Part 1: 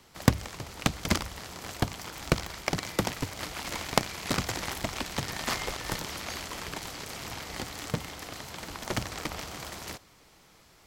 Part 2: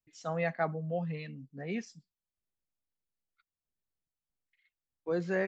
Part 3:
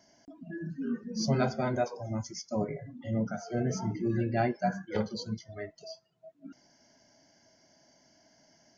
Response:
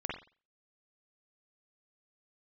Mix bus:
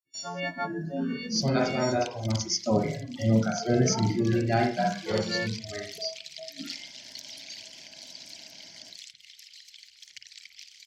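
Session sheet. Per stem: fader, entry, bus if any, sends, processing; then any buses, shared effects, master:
−8.5 dB, 1.20 s, send −8 dB, spectral envelope exaggerated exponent 2; inverse Chebyshev high-pass filter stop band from 1,200 Hz, stop band 40 dB
−3.0 dB, 0.00 s, no send, every partial snapped to a pitch grid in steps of 4 semitones; hum removal 45.95 Hz, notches 8; noise gate −54 dBFS, range −16 dB
+3.0 dB, 0.15 s, send −4.5 dB, automatic ducking −14 dB, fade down 1.00 s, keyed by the second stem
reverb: on, pre-delay 44 ms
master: parametric band 4,800 Hz +9 dB 1.3 octaves

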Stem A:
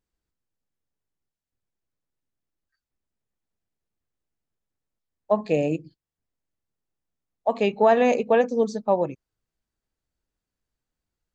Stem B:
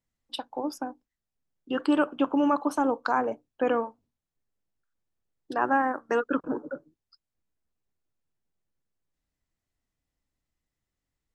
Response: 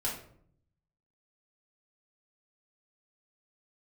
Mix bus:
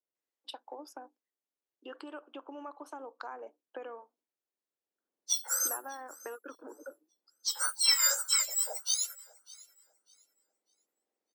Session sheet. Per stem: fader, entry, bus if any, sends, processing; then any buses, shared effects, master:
0:04.77 −15 dB → 0:05.08 −2.5 dB, 0.00 s, no send, echo send −22 dB, frequency axis turned over on the octave scale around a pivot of 1,900 Hz
−7.0 dB, 0.15 s, no send, no echo send, downward compressor 6 to 1, threshold −32 dBFS, peak gain reduction 13 dB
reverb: not used
echo: repeating echo 598 ms, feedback 25%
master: high-pass filter 340 Hz 24 dB per octave

